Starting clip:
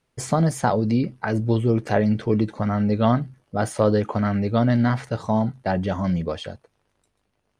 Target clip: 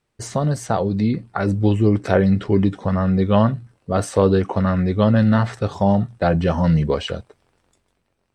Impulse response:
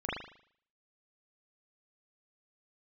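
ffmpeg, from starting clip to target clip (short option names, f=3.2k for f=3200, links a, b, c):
-af "asetrate=40131,aresample=44100,dynaudnorm=f=320:g=7:m=11.5dB,volume=-1dB"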